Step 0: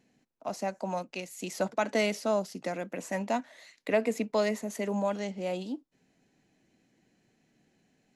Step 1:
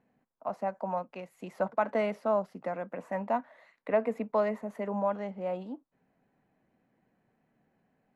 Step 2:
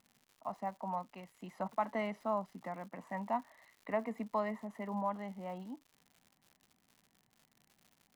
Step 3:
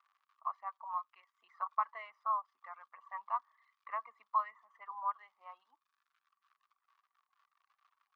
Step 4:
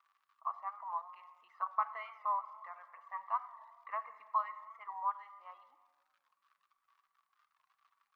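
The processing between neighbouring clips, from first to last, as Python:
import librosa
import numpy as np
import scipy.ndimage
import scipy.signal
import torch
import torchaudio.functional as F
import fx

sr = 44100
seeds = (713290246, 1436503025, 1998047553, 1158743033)

y1 = fx.curve_eq(x, sr, hz=(230.0, 330.0, 510.0, 730.0, 1100.0, 6300.0, 11000.0), db=(0, -4, 3, 4, 7, -22, -16))
y1 = y1 * librosa.db_to_amplitude(-3.0)
y2 = y1 + 0.57 * np.pad(y1, (int(1.0 * sr / 1000.0), 0))[:len(y1)]
y2 = fx.dmg_crackle(y2, sr, seeds[0], per_s=150.0, level_db=-44.0)
y2 = y2 * librosa.db_to_amplitude(-6.5)
y3 = fx.dereverb_blind(y2, sr, rt60_s=1.6)
y3 = fx.ladder_highpass(y3, sr, hz=1100.0, resonance_pct=85)
y3 = fx.air_absorb(y3, sr, metres=210.0)
y3 = y3 * librosa.db_to_amplitude(8.0)
y4 = fx.room_shoebox(y3, sr, seeds[1], volume_m3=2400.0, walls='mixed', distance_m=0.67)
y4 = fx.record_warp(y4, sr, rpm=45.0, depth_cents=100.0)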